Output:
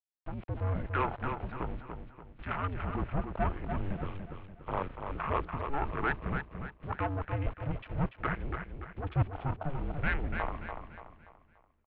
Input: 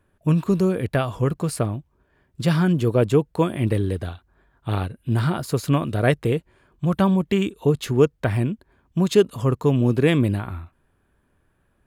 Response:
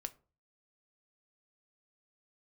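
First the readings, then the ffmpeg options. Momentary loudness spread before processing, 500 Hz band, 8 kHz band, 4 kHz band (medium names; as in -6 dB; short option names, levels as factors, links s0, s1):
9 LU, -17.5 dB, under -40 dB, -18.5 dB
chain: -filter_complex "[0:a]highpass=86,afwtdn=0.0316,equalizer=f=125:t=o:w=1:g=11,equalizer=f=250:t=o:w=1:g=6,equalizer=f=500:t=o:w=1:g=-10,equalizer=f=2000:t=o:w=1:g=6,areverse,acompressor=threshold=0.1:ratio=6,areverse,asplit=2[s0][s1];[s1]highpass=f=720:p=1,volume=11.2,asoftclip=type=tanh:threshold=0.224[s2];[s0][s2]amix=inputs=2:normalize=0,lowpass=f=2100:p=1,volume=0.501,aeval=exprs='val(0)*gte(abs(val(0)),0.0112)':c=same,asplit=2[s3][s4];[s4]aecho=0:1:289|578|867|1156|1445:0.473|0.189|0.0757|0.0303|0.0121[s5];[s3][s5]amix=inputs=2:normalize=0,highpass=f=290:t=q:w=0.5412,highpass=f=290:t=q:w=1.307,lowpass=f=3300:t=q:w=0.5176,lowpass=f=3300:t=q:w=0.7071,lowpass=f=3300:t=q:w=1.932,afreqshift=-280,volume=0.668"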